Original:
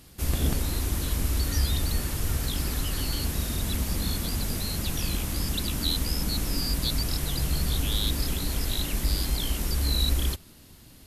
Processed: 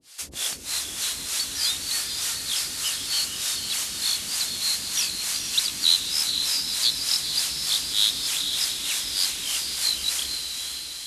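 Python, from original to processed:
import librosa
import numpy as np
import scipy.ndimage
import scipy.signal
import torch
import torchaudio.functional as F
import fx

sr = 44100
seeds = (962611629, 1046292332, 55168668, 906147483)

y = fx.harmonic_tremolo(x, sr, hz=3.3, depth_pct=100, crossover_hz=480.0)
y = fx.cheby_harmonics(y, sr, harmonics=(5,), levels_db=(-29,), full_scale_db=-15.5)
y = fx.weighting(y, sr, curve='ITU-R 468')
y = fx.echo_diffused(y, sr, ms=480, feedback_pct=63, wet_db=-5.5)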